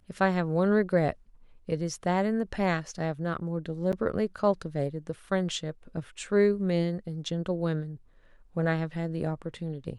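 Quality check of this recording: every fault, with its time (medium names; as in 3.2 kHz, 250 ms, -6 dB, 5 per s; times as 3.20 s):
3.92–3.93 s: dropout 8.2 ms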